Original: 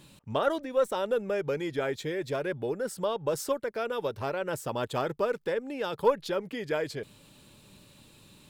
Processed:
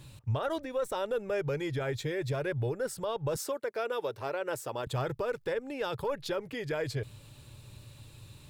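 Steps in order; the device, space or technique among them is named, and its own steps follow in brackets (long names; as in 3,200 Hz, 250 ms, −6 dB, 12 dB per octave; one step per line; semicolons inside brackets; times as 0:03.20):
car stereo with a boomy subwoofer (low shelf with overshoot 150 Hz +7.5 dB, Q 3; brickwall limiter −23.5 dBFS, peak gain reduction 11.5 dB)
notch filter 3,100 Hz, Q 25
0:03.36–0:04.87: Chebyshev high-pass filter 310 Hz, order 2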